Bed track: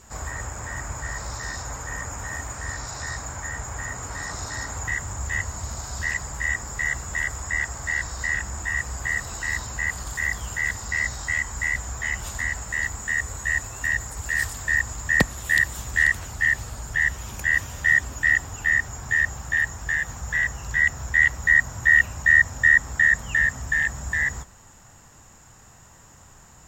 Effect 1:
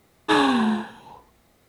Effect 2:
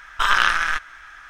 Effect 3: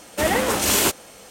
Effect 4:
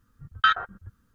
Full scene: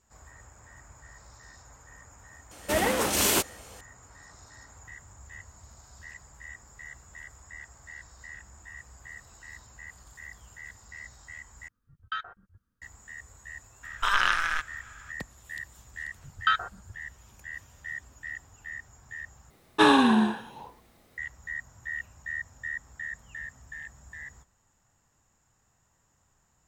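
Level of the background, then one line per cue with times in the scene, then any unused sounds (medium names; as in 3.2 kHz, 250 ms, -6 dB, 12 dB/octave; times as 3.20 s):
bed track -19.5 dB
2.51 s: add 3 -5 dB
11.68 s: replace with 4 -14 dB
13.83 s: add 2 -6.5 dB + buffer glitch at 0.39 s, samples 1024, times 1
16.03 s: add 4 -4 dB
19.50 s: replace with 1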